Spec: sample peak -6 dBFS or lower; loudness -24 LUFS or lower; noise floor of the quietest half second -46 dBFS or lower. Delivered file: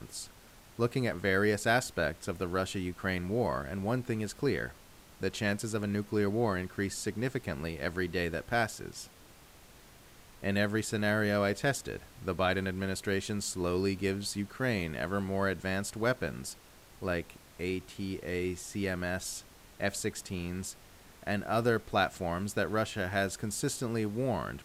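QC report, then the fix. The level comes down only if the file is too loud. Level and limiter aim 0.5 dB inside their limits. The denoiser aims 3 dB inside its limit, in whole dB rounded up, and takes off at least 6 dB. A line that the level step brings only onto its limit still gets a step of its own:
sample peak -14.5 dBFS: pass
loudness -33.0 LUFS: pass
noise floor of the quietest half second -56 dBFS: pass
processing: none needed

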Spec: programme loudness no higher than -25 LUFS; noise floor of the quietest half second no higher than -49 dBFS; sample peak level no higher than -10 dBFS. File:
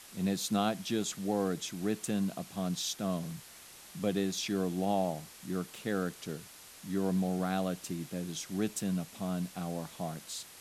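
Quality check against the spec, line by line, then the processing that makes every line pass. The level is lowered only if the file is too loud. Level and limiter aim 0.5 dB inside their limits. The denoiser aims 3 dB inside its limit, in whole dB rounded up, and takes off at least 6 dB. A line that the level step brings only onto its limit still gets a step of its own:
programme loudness -34.5 LUFS: pass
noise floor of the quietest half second -53 dBFS: pass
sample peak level -16.0 dBFS: pass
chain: none needed

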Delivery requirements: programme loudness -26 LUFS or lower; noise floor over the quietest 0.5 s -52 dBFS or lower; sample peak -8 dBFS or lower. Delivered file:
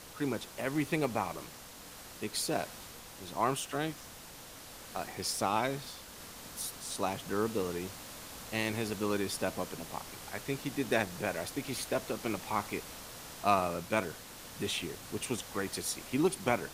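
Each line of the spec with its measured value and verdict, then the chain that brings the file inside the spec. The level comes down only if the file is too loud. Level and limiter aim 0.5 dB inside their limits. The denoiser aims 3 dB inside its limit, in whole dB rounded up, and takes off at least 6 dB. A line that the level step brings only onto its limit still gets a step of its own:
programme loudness -35.0 LUFS: pass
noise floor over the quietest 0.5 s -50 dBFS: fail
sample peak -13.5 dBFS: pass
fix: noise reduction 6 dB, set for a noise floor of -50 dBFS

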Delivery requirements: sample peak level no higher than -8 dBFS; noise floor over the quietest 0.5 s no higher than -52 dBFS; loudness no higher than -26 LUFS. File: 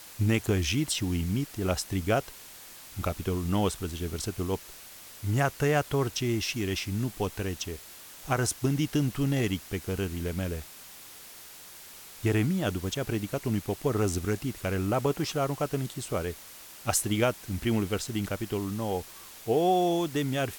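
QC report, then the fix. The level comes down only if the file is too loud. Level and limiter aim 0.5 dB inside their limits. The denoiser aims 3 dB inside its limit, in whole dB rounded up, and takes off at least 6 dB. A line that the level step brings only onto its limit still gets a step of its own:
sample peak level -11.5 dBFS: pass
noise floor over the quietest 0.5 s -48 dBFS: fail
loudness -29.5 LUFS: pass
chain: noise reduction 7 dB, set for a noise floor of -48 dBFS

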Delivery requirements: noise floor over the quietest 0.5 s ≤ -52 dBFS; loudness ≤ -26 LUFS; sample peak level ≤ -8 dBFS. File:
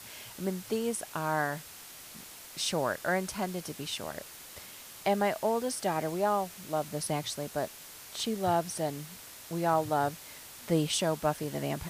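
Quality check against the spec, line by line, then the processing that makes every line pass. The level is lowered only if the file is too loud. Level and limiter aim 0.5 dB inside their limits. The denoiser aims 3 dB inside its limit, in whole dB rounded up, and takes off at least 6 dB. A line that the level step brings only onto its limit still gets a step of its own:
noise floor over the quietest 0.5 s -48 dBFS: fail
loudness -32.0 LUFS: pass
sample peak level -15.0 dBFS: pass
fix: noise reduction 7 dB, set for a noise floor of -48 dBFS

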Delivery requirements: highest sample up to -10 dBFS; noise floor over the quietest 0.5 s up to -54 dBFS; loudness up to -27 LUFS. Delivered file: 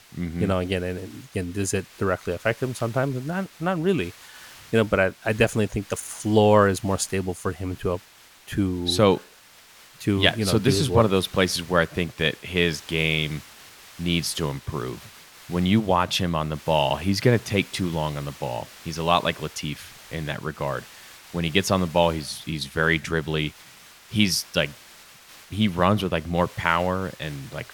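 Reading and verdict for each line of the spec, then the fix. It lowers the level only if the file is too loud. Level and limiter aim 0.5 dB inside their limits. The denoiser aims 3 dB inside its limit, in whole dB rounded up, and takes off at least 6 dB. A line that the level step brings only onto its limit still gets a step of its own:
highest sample -2.5 dBFS: fail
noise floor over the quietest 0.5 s -51 dBFS: fail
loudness -24.0 LUFS: fail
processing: trim -3.5 dB; peak limiter -10.5 dBFS

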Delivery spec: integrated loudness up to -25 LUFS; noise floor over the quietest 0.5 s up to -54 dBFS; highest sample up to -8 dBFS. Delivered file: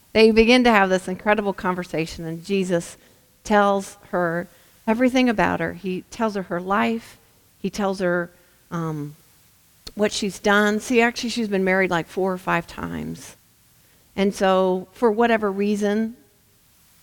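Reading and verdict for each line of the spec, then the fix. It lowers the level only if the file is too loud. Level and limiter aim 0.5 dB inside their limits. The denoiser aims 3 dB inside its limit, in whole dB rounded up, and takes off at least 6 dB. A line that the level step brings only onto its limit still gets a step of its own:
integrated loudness -21.5 LUFS: fail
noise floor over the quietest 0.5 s -58 dBFS: pass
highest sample -2.0 dBFS: fail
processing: trim -4 dB; peak limiter -8.5 dBFS

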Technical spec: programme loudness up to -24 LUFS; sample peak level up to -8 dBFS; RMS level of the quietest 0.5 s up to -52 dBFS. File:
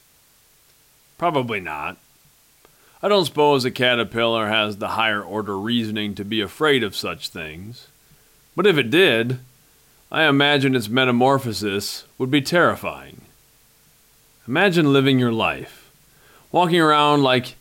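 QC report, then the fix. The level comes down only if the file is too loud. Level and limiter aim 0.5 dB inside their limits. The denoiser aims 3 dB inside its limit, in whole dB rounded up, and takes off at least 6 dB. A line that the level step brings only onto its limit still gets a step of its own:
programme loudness -19.0 LUFS: fail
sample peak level -5.5 dBFS: fail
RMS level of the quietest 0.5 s -56 dBFS: pass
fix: trim -5.5 dB

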